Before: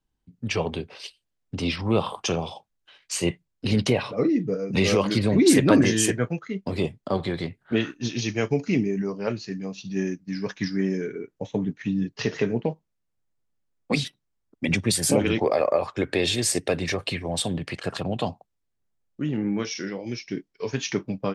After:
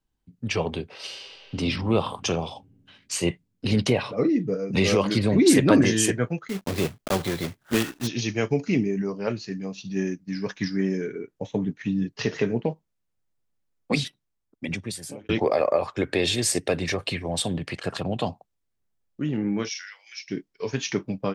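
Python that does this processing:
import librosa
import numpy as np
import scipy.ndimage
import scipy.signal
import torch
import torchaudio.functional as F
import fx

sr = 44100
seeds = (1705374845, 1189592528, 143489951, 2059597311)

y = fx.reverb_throw(x, sr, start_s=0.92, length_s=0.64, rt60_s=2.5, drr_db=-4.5)
y = fx.block_float(y, sr, bits=3, at=(6.48, 8.06), fade=0.02)
y = fx.highpass(y, sr, hz=1400.0, slope=24, at=(19.68, 20.28), fade=0.02)
y = fx.edit(y, sr, fx.fade_out_span(start_s=14.04, length_s=1.25), tone=tone)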